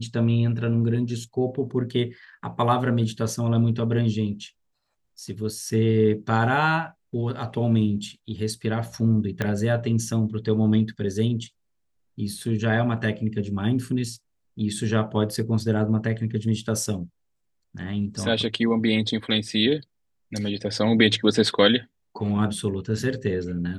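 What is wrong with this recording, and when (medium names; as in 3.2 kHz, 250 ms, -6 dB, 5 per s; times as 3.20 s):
9.42 s: pop -12 dBFS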